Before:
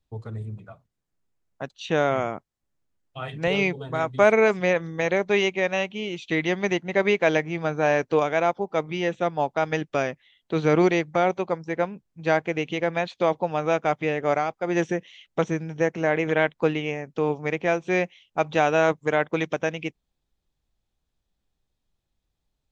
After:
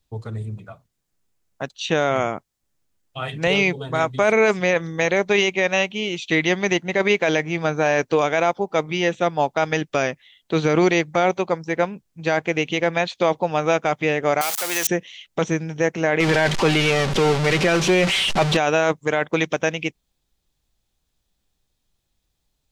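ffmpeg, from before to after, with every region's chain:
ffmpeg -i in.wav -filter_complex "[0:a]asettb=1/sr,asplit=3[link_01][link_02][link_03];[link_01]atrim=end=14.414[link_04];[link_02]atrim=start=14.41:end=14.87,asetpts=PTS-STARTPTS,afade=type=in:duration=0.004:curve=qsin,afade=type=out:start_time=0.456:duration=0.004:curve=qsin,aeval=exprs='val(0)+0.5*0.0355*sgn(val(0))':channel_layout=same,highpass=frequency=1400:poles=1,highshelf=frequency=5100:gain=11[link_05];[link_03]atrim=start=14.866[link_06];[link_04][link_05]acrossfade=duration=0.004:curve1=hsin:curve2=qsin[link_07];[link_07][link_06]acrossfade=duration=0.004:curve1=qsin:curve2=hsin,asettb=1/sr,asplit=3[link_08][link_09][link_10];[link_08]atrim=end=16.204[link_11];[link_09]atrim=start=16.2:end=18.57,asetpts=PTS-STARTPTS,afade=type=in:duration=0.004:curve=qsin,afade=type=out:start_time=2.366:duration=0.004:curve=qsin,aeval=exprs='val(0)+0.5*0.0794*sgn(val(0))':channel_layout=same,lowpass=5100,aecho=1:1:5.2:0.37,atrim=end_sample=104517[link_12];[link_10]atrim=start=18.566[link_13];[link_11][link_12]acrossfade=duration=0.004:curve1=hsin:curve2=qsin[link_14];[link_14][link_13]acrossfade=duration=0.004:curve1=qsin:curve2=hsin,highshelf=frequency=3000:gain=8,alimiter=limit=-12dB:level=0:latency=1:release=11,volume=4dB" out.wav

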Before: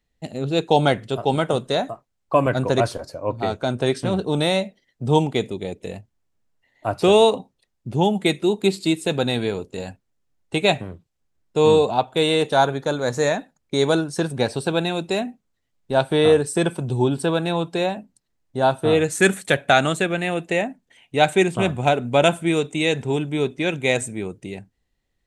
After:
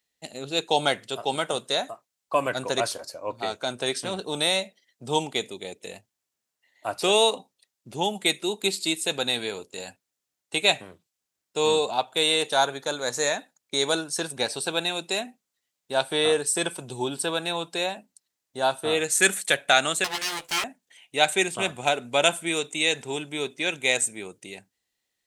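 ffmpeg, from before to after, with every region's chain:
ffmpeg -i in.wav -filter_complex "[0:a]asettb=1/sr,asplit=3[link_01][link_02][link_03];[link_01]atrim=end=20.044[link_04];[link_02]atrim=start=20.04:end=20.64,asetpts=PTS-STARTPTS,afade=type=in:duration=0.004:curve=qsin,afade=type=out:start_time=0.596:duration=0.004:curve=qsin,equalizer=frequency=400:width=7.7:gain=-11.5,aeval=exprs='abs(val(0))':channel_layout=same,asplit=2[link_05][link_06];[link_06]adelay=14,volume=-4dB[link_07];[link_05][link_07]amix=inputs=2:normalize=0,atrim=end_sample=26460[link_08];[link_03]atrim=start=20.636[link_09];[link_04][link_08]acrossfade=duration=0.004:curve1=hsin:curve2=qsin[link_10];[link_10][link_09]acrossfade=duration=0.004:curve1=qsin:curve2=hsin,highpass=frequency=560:poles=1,highshelf=frequency=3100:gain=11,volume=-4dB" out.wav

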